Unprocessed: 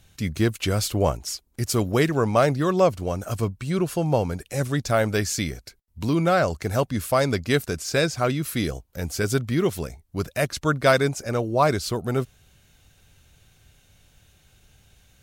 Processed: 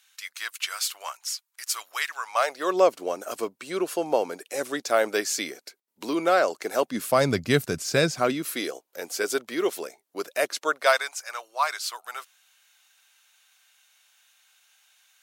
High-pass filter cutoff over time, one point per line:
high-pass filter 24 dB per octave
0:02.24 1,100 Hz
0:02.76 320 Hz
0:06.77 320 Hz
0:07.32 110 Hz
0:07.94 110 Hz
0:08.65 350 Hz
0:10.56 350 Hz
0:11.12 930 Hz

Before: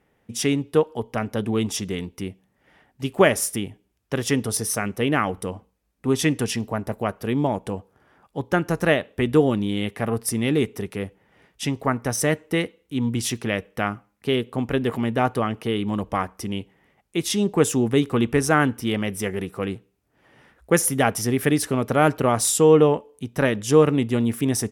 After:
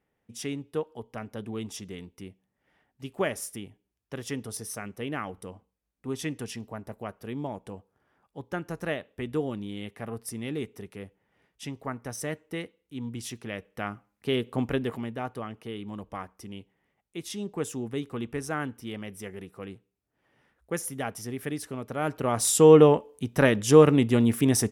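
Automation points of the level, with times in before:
0:13.45 −12 dB
0:14.62 −2.5 dB
0:15.18 −13 dB
0:21.95 −13 dB
0:22.66 0 dB

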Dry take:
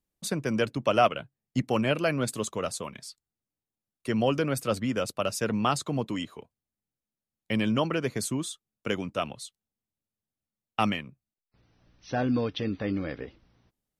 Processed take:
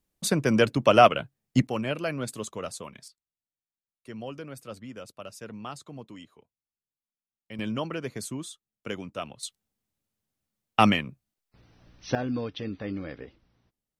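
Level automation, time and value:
+5.5 dB
from 0:01.67 −4 dB
from 0:03.08 −13 dB
from 0:07.59 −5 dB
from 0:09.43 +6.5 dB
from 0:12.15 −4 dB

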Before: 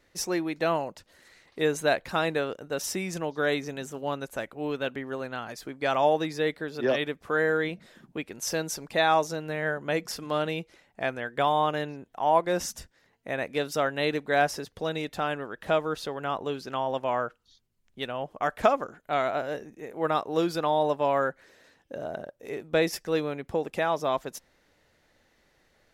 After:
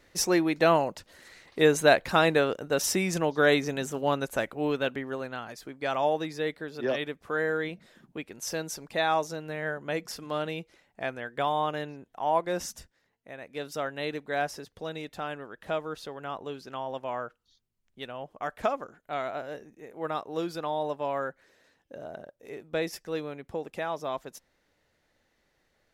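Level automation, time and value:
0:04.48 +4.5 dB
0:05.58 −3.5 dB
0:12.74 −3.5 dB
0:13.40 −13 dB
0:13.65 −6 dB

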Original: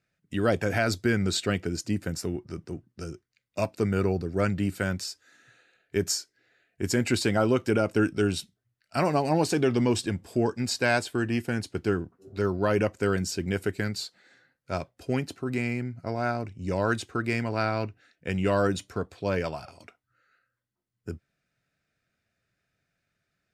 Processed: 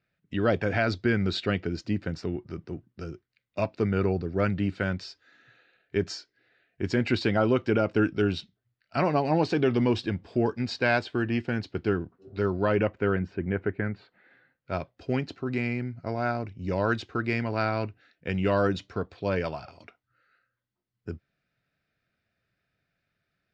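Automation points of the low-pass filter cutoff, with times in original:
low-pass filter 24 dB per octave
0:12.58 4,400 Hz
0:13.37 2,100 Hz
0:13.99 2,100 Hz
0:14.96 4,900 Hz

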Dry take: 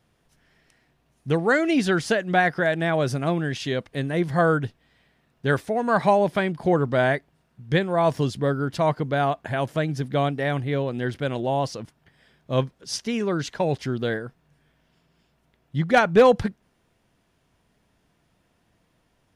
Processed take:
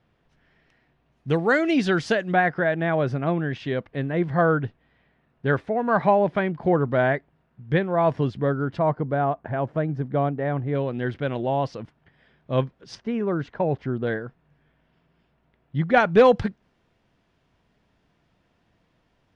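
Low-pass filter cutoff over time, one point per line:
3,200 Hz
from 0:01.29 5,300 Hz
from 0:02.32 2,300 Hz
from 0:08.79 1,300 Hz
from 0:10.75 2,900 Hz
from 0:12.95 1,500 Hz
from 0:14.07 2,700 Hz
from 0:16.00 4,700 Hz

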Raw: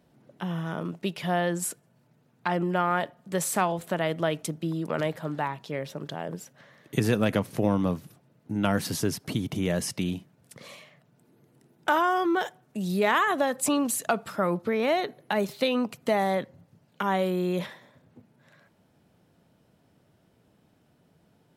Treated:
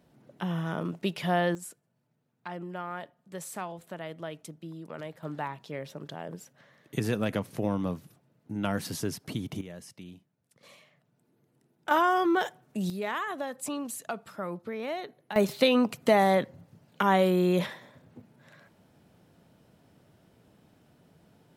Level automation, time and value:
0 dB
from 0:01.55 −12 dB
from 0:05.23 −5 dB
from 0:09.61 −17 dB
from 0:10.63 −8.5 dB
from 0:11.91 0 dB
from 0:12.90 −9.5 dB
from 0:15.36 +3 dB

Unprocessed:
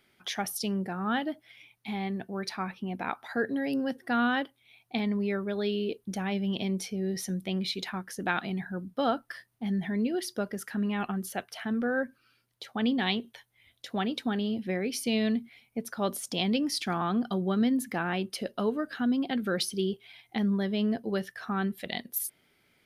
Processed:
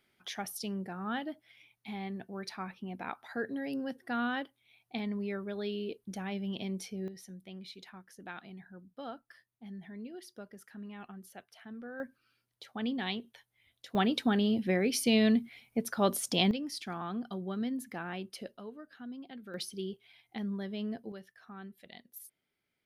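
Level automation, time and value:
−6.5 dB
from 0:07.08 −15.5 dB
from 0:12.00 −7 dB
from 0:13.95 +2 dB
from 0:16.51 −9 dB
from 0:18.57 −17 dB
from 0:19.54 −9 dB
from 0:21.12 −17 dB

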